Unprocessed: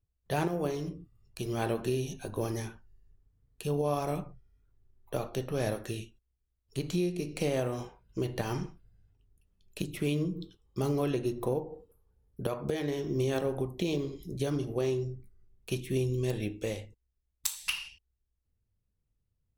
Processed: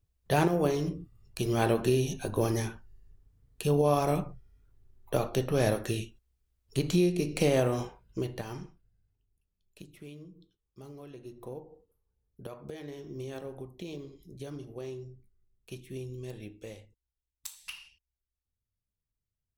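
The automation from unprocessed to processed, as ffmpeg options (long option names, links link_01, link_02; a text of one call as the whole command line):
ffmpeg -i in.wav -af "volume=12.5dB,afade=type=out:start_time=7.77:duration=0.69:silence=0.266073,afade=type=out:start_time=8.46:duration=1.71:silence=0.281838,afade=type=in:start_time=11.1:duration=0.53:silence=0.421697" out.wav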